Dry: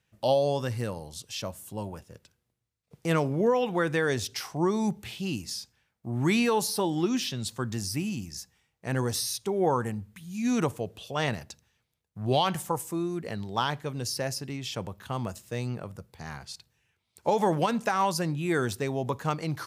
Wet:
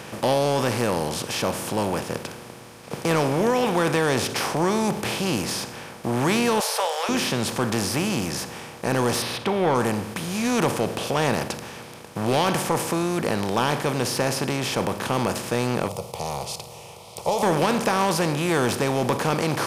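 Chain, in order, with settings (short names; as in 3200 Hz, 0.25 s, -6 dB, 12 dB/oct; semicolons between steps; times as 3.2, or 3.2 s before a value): per-bin compression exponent 0.4; 6.6–7.09 steep high-pass 460 Hz 72 dB/oct; soft clip -11 dBFS, distortion -19 dB; 9.22–9.75 resonant high shelf 4900 Hz -9 dB, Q 1.5; 15.88–17.43 fixed phaser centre 670 Hz, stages 4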